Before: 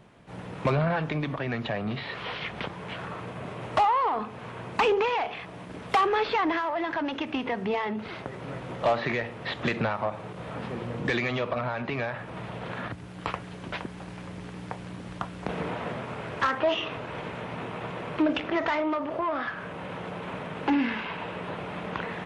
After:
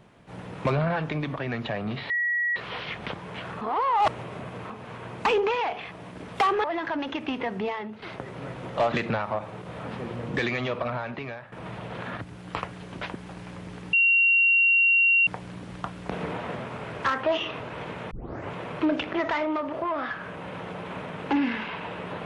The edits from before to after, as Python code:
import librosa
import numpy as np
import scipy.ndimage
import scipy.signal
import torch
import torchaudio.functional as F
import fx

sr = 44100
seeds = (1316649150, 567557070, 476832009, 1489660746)

y = fx.edit(x, sr, fx.insert_tone(at_s=2.1, length_s=0.46, hz=1920.0, db=-22.5),
    fx.reverse_span(start_s=3.15, length_s=1.09),
    fx.cut(start_s=6.18, length_s=0.52),
    fx.fade_out_to(start_s=7.61, length_s=0.47, floor_db=-9.5),
    fx.cut(start_s=8.98, length_s=0.65),
    fx.fade_out_to(start_s=11.64, length_s=0.59, floor_db=-14.0),
    fx.insert_tone(at_s=14.64, length_s=1.34, hz=2750.0, db=-16.5),
    fx.tape_start(start_s=17.48, length_s=0.42), tone=tone)